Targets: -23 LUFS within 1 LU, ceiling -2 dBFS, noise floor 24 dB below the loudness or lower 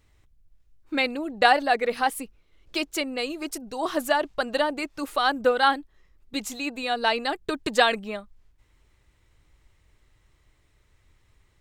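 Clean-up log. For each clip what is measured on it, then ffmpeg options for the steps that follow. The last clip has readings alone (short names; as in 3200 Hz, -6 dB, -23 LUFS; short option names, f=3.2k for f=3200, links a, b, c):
loudness -25.5 LUFS; peak -3.0 dBFS; loudness target -23.0 LUFS
-> -af "volume=2.5dB,alimiter=limit=-2dB:level=0:latency=1"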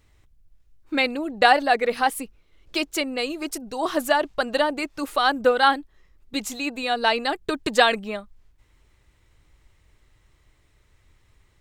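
loudness -23.0 LUFS; peak -2.0 dBFS; noise floor -62 dBFS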